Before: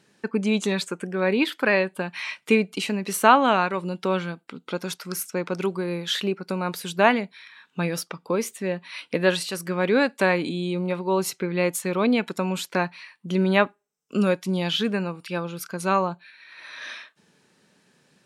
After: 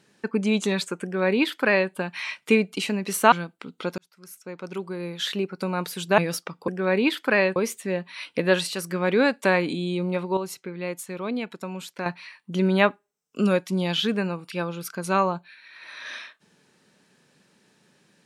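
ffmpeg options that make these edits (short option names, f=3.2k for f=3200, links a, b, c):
-filter_complex "[0:a]asplit=8[a][b][c][d][e][f][g][h];[a]atrim=end=3.322[i];[b]atrim=start=4.198:end=4.86,asetpts=PTS-STARTPTS,afade=t=out:st=0.658:d=0.004:c=hsin[j];[c]atrim=start=4.86:end=7.062,asetpts=PTS-STARTPTS,afade=t=in:d=1.69[k];[d]atrim=start=7.818:end=8.322[l];[e]atrim=start=1.028:end=1.912[m];[f]atrim=start=8.318:end=11.132[n];[g]atrim=start=11.128:end=12.822,asetpts=PTS-STARTPTS,volume=-8dB[o];[h]atrim=start=12.818[p];[j][k]concat=n=2:v=0:a=1[q];[i][q]acrossfade=d=0.004:c1=hsin:c2=hsin[r];[r][l]acrossfade=d=0.004:c1=hsin:c2=hsin[s];[s][m]acrossfade=d=0.004:c1=hsin:c2=hsin[t];[t][n]acrossfade=d=0.004:c1=hsin:c2=hsin[u];[u][o]acrossfade=d=0.004:c1=hsin:c2=hsin[v];[v][p]acrossfade=d=0.004:c1=hsin:c2=hsin"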